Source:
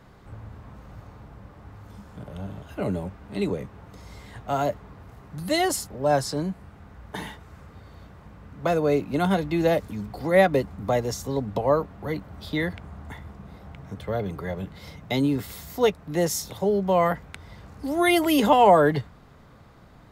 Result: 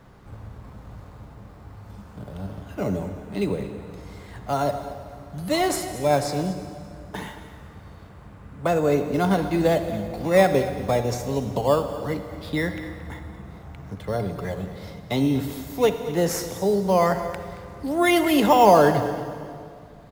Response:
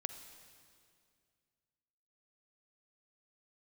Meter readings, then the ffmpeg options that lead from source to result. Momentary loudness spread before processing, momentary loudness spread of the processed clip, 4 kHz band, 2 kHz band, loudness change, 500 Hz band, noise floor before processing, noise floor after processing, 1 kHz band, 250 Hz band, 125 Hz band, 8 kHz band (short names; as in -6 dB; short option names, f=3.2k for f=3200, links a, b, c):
22 LU, 21 LU, +0.5 dB, +0.5 dB, +1.5 dB, +2.0 dB, -50 dBFS, -45 dBFS, +1.5 dB, +2.0 dB, +2.0 dB, +0.5 dB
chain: -filter_complex "[0:a]asplit=2[a][b];[b]acrusher=samples=10:mix=1:aa=0.000001:lfo=1:lforange=10:lforate=0.21,volume=-8dB[c];[a][c]amix=inputs=2:normalize=0,aecho=1:1:225:0.168[d];[1:a]atrim=start_sample=2205[e];[d][e]afir=irnorm=-1:irlink=0"